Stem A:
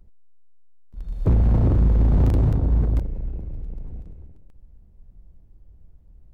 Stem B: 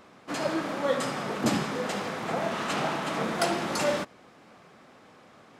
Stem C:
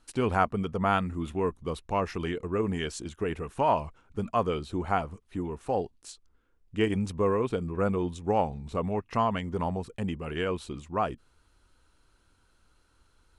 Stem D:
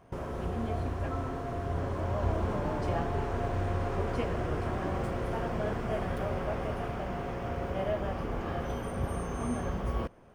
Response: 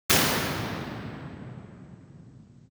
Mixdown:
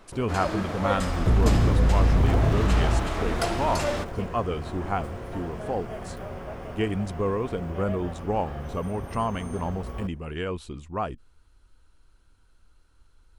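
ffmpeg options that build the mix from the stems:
-filter_complex "[0:a]aeval=exprs='val(0)*gte(abs(val(0)),0.015)':channel_layout=same,volume=-3dB[link_01];[1:a]volume=-1.5dB[link_02];[2:a]lowshelf=frequency=72:gain=12,volume=-1.5dB[link_03];[3:a]highshelf=frequency=8800:gain=6.5,volume=-4dB[link_04];[link_01][link_02][link_03][link_04]amix=inputs=4:normalize=0"

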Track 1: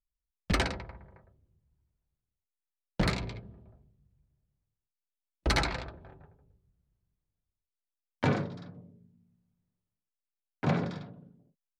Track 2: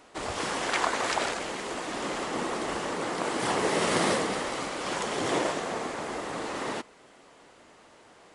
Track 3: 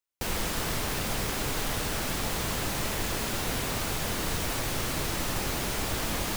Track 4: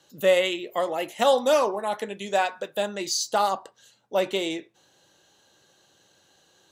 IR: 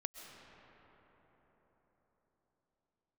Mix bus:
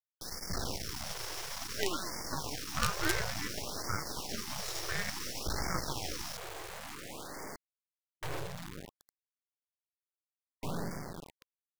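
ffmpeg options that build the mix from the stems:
-filter_complex "[0:a]alimiter=level_in=0.5dB:limit=-24dB:level=0:latency=1:release=11,volume=-0.5dB,asoftclip=type=tanh:threshold=-31.5dB,volume=0.5dB,asplit=2[link_01][link_02];[link_02]volume=-4dB[link_03];[1:a]alimiter=limit=-21.5dB:level=0:latency=1:release=100,asoftclip=type=tanh:threshold=-28.5dB,adelay=750,volume=-7dB,asplit=2[link_04][link_05];[link_05]volume=-23.5dB[link_06];[2:a]lowpass=frequency=5500:width_type=q:width=8.5,volume=-13.5dB,asplit=2[link_07][link_08];[link_08]volume=-16dB[link_09];[3:a]highshelf=frequency=2300:gain=-3.5,aeval=exprs='val(0)*sin(2*PI*760*n/s+760*0.5/0.54*sin(2*PI*0.54*n/s))':channel_layout=same,adelay=1550,volume=-7.5dB,asplit=2[link_10][link_11];[link_11]volume=-18.5dB[link_12];[4:a]atrim=start_sample=2205[link_13];[link_03][link_06][link_09][link_12]amix=inputs=4:normalize=0[link_14];[link_14][link_13]afir=irnorm=-1:irlink=0[link_15];[link_01][link_04][link_07][link_10][link_15]amix=inputs=5:normalize=0,acrusher=bits=4:dc=4:mix=0:aa=0.000001,afftfilt=real='re*(1-between(b*sr/1024,210*pow(3300/210,0.5+0.5*sin(2*PI*0.57*pts/sr))/1.41,210*pow(3300/210,0.5+0.5*sin(2*PI*0.57*pts/sr))*1.41))':imag='im*(1-between(b*sr/1024,210*pow(3300/210,0.5+0.5*sin(2*PI*0.57*pts/sr))/1.41,210*pow(3300/210,0.5+0.5*sin(2*PI*0.57*pts/sr))*1.41))':win_size=1024:overlap=0.75"

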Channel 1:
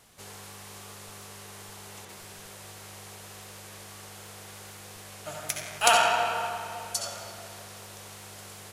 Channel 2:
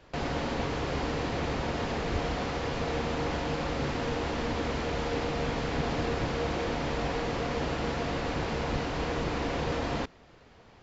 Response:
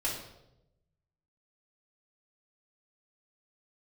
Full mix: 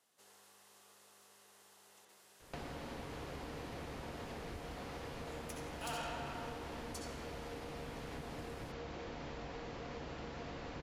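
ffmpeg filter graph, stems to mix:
-filter_complex "[0:a]highpass=260,bandreject=frequency=2300:width=14,asoftclip=type=tanh:threshold=-21dB,volume=-17.5dB[link_01];[1:a]acompressor=threshold=-37dB:ratio=10,adelay=2400,volume=-5.5dB[link_02];[link_01][link_02]amix=inputs=2:normalize=0"

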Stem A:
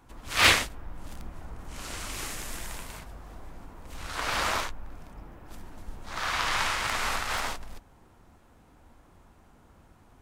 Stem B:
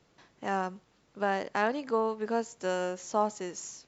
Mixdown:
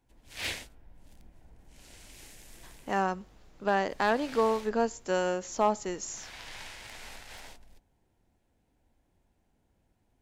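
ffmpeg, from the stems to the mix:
ffmpeg -i stem1.wav -i stem2.wav -filter_complex "[0:a]equalizer=frequency=1200:width=2.8:gain=-14,bandreject=frequency=79.04:width_type=h:width=4,bandreject=frequency=158.08:width_type=h:width=4,bandreject=frequency=237.12:width_type=h:width=4,bandreject=frequency=316.16:width_type=h:width=4,bandreject=frequency=395.2:width_type=h:width=4,bandreject=frequency=474.24:width_type=h:width=4,bandreject=frequency=553.28:width_type=h:width=4,bandreject=frequency=632.32:width_type=h:width=4,bandreject=frequency=711.36:width_type=h:width=4,bandreject=frequency=790.4:width_type=h:width=4,bandreject=frequency=869.44:width_type=h:width=4,bandreject=frequency=948.48:width_type=h:width=4,bandreject=frequency=1027.52:width_type=h:width=4,bandreject=frequency=1106.56:width_type=h:width=4,bandreject=frequency=1185.6:width_type=h:width=4,bandreject=frequency=1264.64:width_type=h:width=4,bandreject=frequency=1343.68:width_type=h:width=4,bandreject=frequency=1422.72:width_type=h:width=4,bandreject=frequency=1501.76:width_type=h:width=4,volume=-14dB[link_01];[1:a]asoftclip=type=hard:threshold=-18dB,adelay=2450,volume=2.5dB[link_02];[link_01][link_02]amix=inputs=2:normalize=0" out.wav

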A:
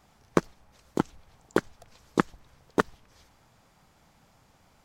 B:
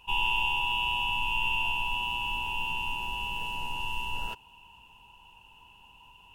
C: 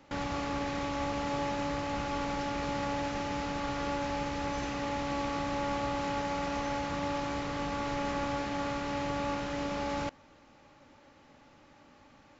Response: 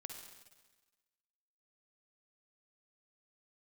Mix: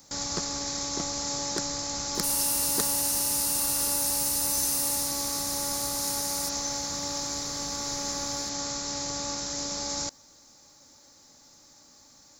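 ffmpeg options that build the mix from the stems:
-filter_complex "[0:a]lowpass=frequency=3500:width=0.5412,lowpass=frequency=3500:width=1.3066,asoftclip=type=tanh:threshold=-20dB,volume=-5dB[link_01];[1:a]highpass=1100,highshelf=frequency=6700:width_type=q:width=3:gain=13,adelay=2150,volume=-15dB,afade=type=out:start_time=4.91:duration=0.22:silence=0.446684[link_02];[2:a]volume=-4dB[link_03];[link_01][link_02][link_03]amix=inputs=3:normalize=0,aexciter=amount=9.3:drive=9.3:freq=4400"

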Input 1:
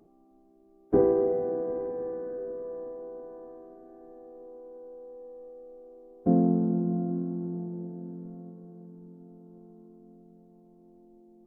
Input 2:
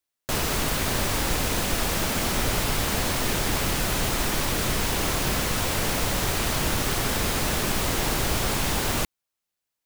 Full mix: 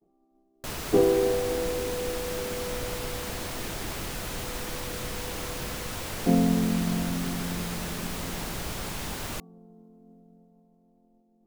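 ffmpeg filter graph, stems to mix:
ffmpeg -i stem1.wav -i stem2.wav -filter_complex "[0:a]bandreject=frequency=50:width_type=h:width=6,bandreject=frequency=100:width_type=h:width=6,bandreject=frequency=150:width_type=h:width=6,bandreject=frequency=200:width_type=h:width=6,bandreject=frequency=250:width_type=h:width=6,bandreject=frequency=300:width_type=h:width=6,bandreject=frequency=350:width_type=h:width=6,volume=1dB[link_01];[1:a]bandreject=frequency=377.9:width_type=h:width=4,bandreject=frequency=755.8:width_type=h:width=4,bandreject=frequency=1133.7:width_type=h:width=4,adelay=350,volume=-9.5dB[link_02];[link_01][link_02]amix=inputs=2:normalize=0,agate=range=-33dB:threshold=-53dB:ratio=3:detection=peak" out.wav

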